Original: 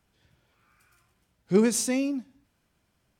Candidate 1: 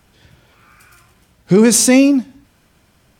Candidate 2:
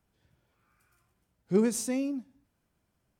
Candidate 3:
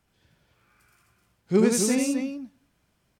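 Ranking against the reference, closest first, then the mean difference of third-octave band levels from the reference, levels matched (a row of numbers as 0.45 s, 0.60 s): 2, 1, 3; 1.5 dB, 2.5 dB, 6.5 dB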